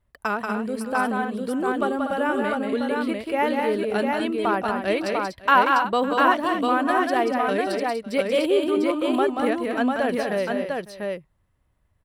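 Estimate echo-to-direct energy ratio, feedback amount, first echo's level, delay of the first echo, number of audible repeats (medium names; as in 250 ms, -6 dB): 0.0 dB, no regular repeats, -4.5 dB, 184 ms, 4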